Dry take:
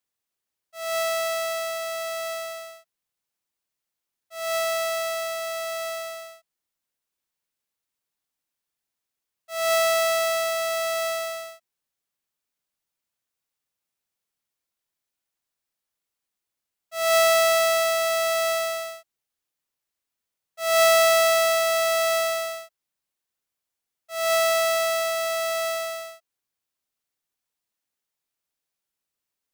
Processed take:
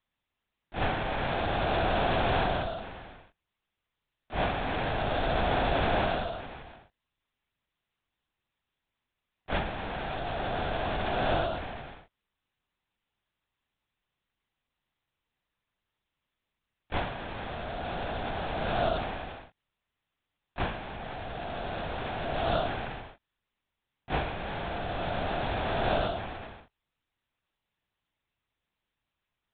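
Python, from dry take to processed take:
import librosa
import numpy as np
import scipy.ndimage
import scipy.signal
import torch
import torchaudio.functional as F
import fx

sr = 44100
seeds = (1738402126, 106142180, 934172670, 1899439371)

y = x + 10.0 ** (-15.0 / 20.0) * np.pad(x, (int(485 * sr / 1000.0), 0))[:len(x)]
y = fx.over_compress(y, sr, threshold_db=-31.0, ratio=-1.0)
y = fx.lpc_vocoder(y, sr, seeds[0], excitation='whisper', order=8)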